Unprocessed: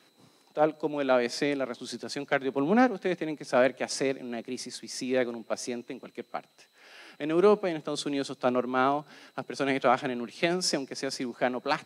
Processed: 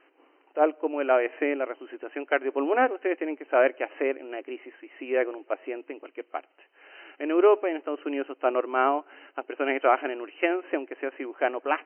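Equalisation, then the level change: brick-wall FIR band-pass 270–3100 Hz; +2.5 dB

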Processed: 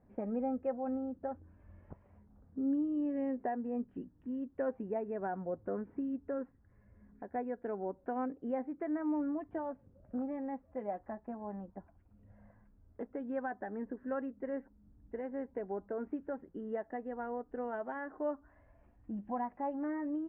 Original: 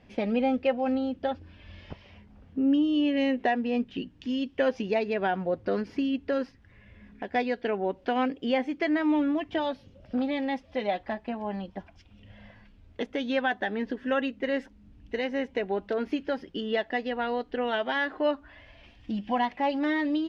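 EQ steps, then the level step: low-pass 1.5 kHz 24 dB/octave; distance through air 390 m; -8.5 dB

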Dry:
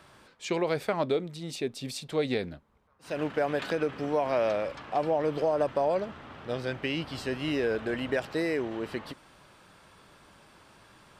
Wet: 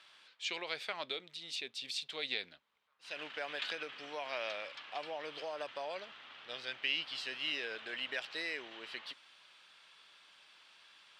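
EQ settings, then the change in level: band-pass filter 3.3 kHz, Q 1.7; +3.5 dB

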